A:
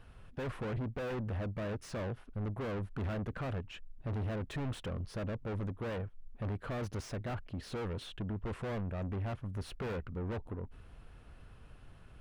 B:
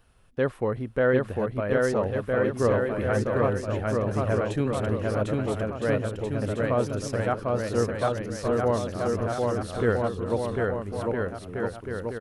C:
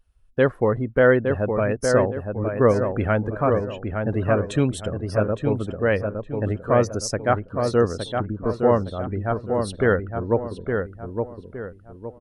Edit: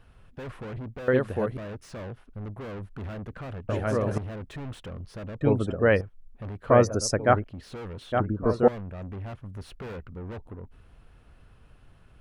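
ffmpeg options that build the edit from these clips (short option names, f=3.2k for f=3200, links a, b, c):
-filter_complex "[1:a]asplit=2[a][b];[2:a]asplit=3[c][d][e];[0:a]asplit=6[f][g][h][i][j][k];[f]atrim=end=1.082[l];[a]atrim=start=1.078:end=1.572[m];[g]atrim=start=1.568:end=3.692[n];[b]atrim=start=3.688:end=4.182[o];[h]atrim=start=4.178:end=5.412[p];[c]atrim=start=5.408:end=6.012[q];[i]atrim=start=6.008:end=6.702[r];[d]atrim=start=6.698:end=7.442[s];[j]atrim=start=7.438:end=8.122[t];[e]atrim=start=8.118:end=8.682[u];[k]atrim=start=8.678[v];[l][m]acrossfade=d=0.004:c1=hsin:c2=hsin[w];[w][n]acrossfade=d=0.004:c1=hsin:c2=hsin[x];[x][o]acrossfade=d=0.004:c1=hsin:c2=hsin[y];[y][p]acrossfade=d=0.004:c1=hsin:c2=hsin[z];[z][q]acrossfade=d=0.004:c1=hsin:c2=hsin[aa];[aa][r]acrossfade=d=0.004:c1=hsin:c2=hsin[ab];[ab][s]acrossfade=d=0.004:c1=hsin:c2=hsin[ac];[ac][t]acrossfade=d=0.004:c1=hsin:c2=hsin[ad];[ad][u]acrossfade=d=0.004:c1=hsin:c2=hsin[ae];[ae][v]acrossfade=d=0.004:c1=hsin:c2=hsin"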